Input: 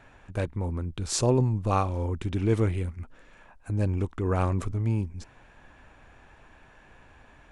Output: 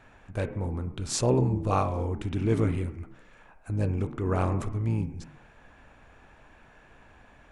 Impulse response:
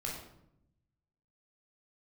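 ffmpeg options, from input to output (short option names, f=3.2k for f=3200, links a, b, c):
-filter_complex "[0:a]asplit=2[a][b];[b]highpass=f=210:t=q:w=0.5412,highpass=f=210:t=q:w=1.307,lowpass=f=3.3k:t=q:w=0.5176,lowpass=f=3.3k:t=q:w=0.7071,lowpass=f=3.3k:t=q:w=1.932,afreqshift=-55[c];[1:a]atrim=start_sample=2205,afade=t=out:st=0.39:d=0.01,atrim=end_sample=17640,lowpass=2.7k[d];[c][d]afir=irnorm=-1:irlink=0,volume=-6.5dB[e];[a][e]amix=inputs=2:normalize=0,volume=-1.5dB"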